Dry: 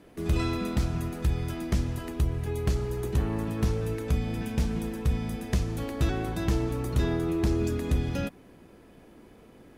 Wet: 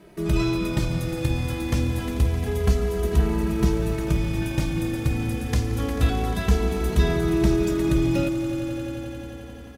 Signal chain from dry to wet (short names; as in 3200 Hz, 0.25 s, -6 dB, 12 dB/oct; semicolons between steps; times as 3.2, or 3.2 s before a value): swelling echo 88 ms, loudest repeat 5, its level -14 dB; endless flanger 2.7 ms -0.27 Hz; gain +7.5 dB